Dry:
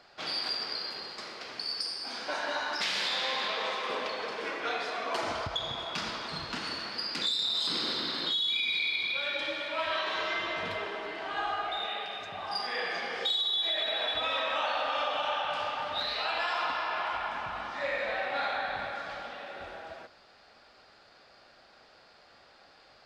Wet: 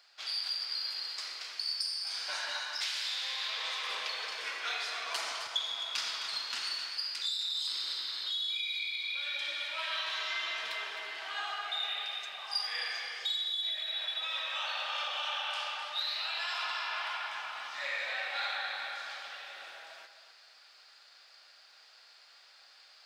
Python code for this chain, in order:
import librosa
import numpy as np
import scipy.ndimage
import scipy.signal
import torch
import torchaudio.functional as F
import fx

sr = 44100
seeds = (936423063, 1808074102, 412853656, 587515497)

p1 = fx.highpass(x, sr, hz=1500.0, slope=6)
p2 = fx.tilt_eq(p1, sr, slope=3.0)
p3 = fx.rider(p2, sr, range_db=4, speed_s=0.5)
p4 = p3 + fx.echo_feedback(p3, sr, ms=261, feedback_pct=29, wet_db=-10.5, dry=0)
y = p4 * librosa.db_to_amplitude(-6.0)